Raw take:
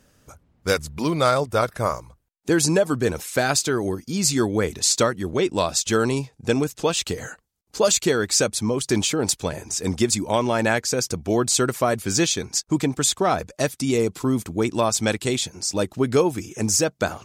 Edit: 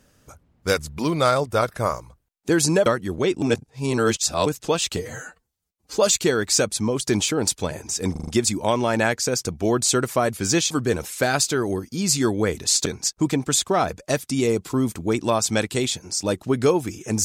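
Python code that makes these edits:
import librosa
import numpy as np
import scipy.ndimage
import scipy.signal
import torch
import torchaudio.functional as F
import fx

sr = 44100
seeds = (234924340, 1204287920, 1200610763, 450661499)

y = fx.edit(x, sr, fx.move(start_s=2.86, length_s=2.15, to_s=12.36),
    fx.reverse_span(start_s=5.57, length_s=1.04),
    fx.stretch_span(start_s=7.12, length_s=0.67, factor=1.5),
    fx.stutter(start_s=9.93, slice_s=0.04, count=5), tone=tone)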